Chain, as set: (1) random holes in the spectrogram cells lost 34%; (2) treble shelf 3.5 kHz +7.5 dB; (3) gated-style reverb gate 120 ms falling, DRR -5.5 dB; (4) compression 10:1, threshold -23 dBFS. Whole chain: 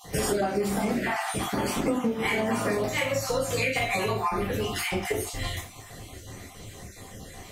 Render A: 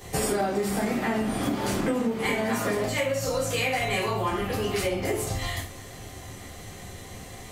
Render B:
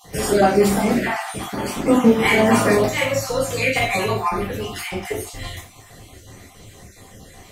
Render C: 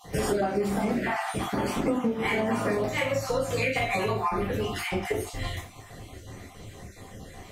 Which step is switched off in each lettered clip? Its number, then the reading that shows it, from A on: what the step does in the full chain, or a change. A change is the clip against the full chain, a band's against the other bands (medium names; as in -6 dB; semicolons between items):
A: 1, momentary loudness spread change -2 LU; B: 4, mean gain reduction 4.0 dB; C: 2, 8 kHz band -6.0 dB